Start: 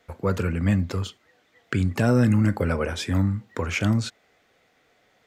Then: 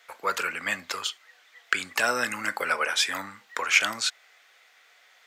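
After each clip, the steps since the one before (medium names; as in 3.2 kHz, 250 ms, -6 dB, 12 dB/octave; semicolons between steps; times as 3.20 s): high-pass 1.2 kHz 12 dB/octave; trim +8.5 dB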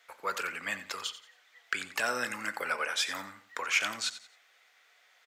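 saturation -8.5 dBFS, distortion -22 dB; feedback delay 89 ms, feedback 31%, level -13.5 dB; trim -6 dB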